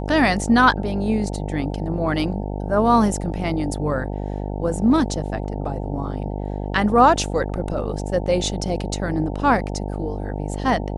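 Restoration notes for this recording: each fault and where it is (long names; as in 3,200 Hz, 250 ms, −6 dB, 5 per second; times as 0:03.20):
mains buzz 50 Hz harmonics 18 −27 dBFS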